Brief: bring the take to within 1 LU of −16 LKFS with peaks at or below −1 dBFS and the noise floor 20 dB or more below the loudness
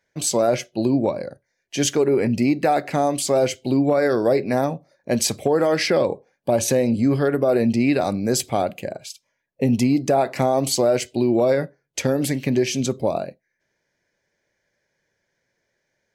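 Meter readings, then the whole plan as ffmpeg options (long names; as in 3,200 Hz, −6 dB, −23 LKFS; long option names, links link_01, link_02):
integrated loudness −21.0 LKFS; sample peak −6.5 dBFS; target loudness −16.0 LKFS
→ -af "volume=5dB"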